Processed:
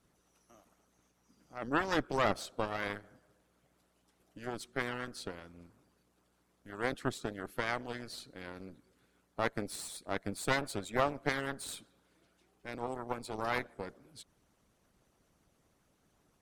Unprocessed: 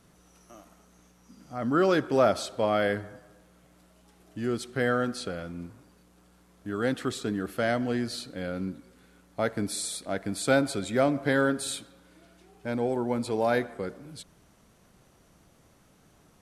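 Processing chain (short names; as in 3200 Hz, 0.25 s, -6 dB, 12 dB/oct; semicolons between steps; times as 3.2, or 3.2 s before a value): added harmonics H 4 -7 dB, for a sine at -10 dBFS; harmonic-percussive split harmonic -14 dB; gain -7 dB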